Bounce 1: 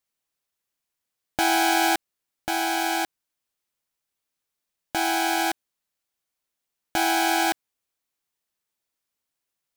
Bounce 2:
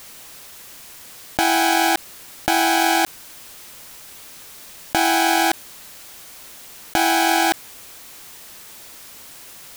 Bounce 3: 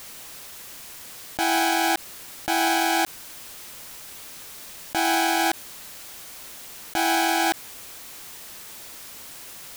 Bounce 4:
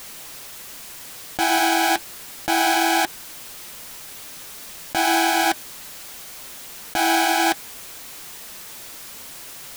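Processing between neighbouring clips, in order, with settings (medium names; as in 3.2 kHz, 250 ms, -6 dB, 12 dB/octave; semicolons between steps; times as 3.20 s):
level flattener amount 100%; trim +2.5 dB
peak limiter -13 dBFS, peak gain reduction 9.5 dB
flange 1.3 Hz, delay 3.9 ms, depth 4.2 ms, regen -56%; trim +7 dB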